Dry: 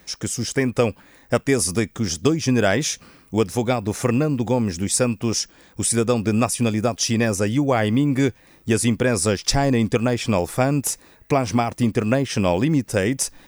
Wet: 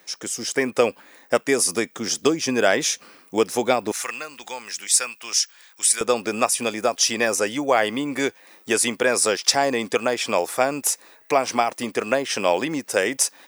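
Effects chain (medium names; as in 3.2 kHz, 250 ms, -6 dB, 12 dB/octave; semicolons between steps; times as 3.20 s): high-pass 360 Hz 12 dB/octave, from 3.92 s 1.5 kHz, from 6.01 s 490 Hz; level rider gain up to 5.5 dB; trim -1 dB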